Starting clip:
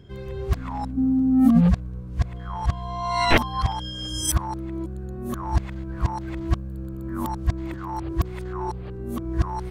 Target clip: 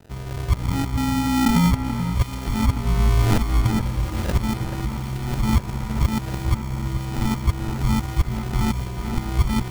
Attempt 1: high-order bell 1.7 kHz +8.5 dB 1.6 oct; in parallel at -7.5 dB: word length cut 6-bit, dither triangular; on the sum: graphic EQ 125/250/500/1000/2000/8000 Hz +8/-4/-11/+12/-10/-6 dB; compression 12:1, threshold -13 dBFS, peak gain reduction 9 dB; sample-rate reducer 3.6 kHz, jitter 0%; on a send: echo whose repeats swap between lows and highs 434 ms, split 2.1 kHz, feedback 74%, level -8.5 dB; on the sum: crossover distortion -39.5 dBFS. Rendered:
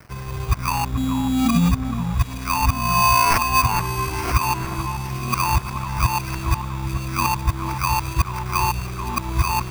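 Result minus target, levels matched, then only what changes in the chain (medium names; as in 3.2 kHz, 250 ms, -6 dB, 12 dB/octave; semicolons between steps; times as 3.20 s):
sample-rate reducer: distortion -7 dB
change: sample-rate reducer 1.1 kHz, jitter 0%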